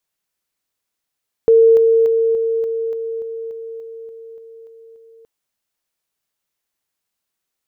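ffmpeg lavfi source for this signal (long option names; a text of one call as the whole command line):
ffmpeg -f lavfi -i "aevalsrc='pow(10,(-6.5-3*floor(t/0.29))/20)*sin(2*PI*454*t)':duration=3.77:sample_rate=44100" out.wav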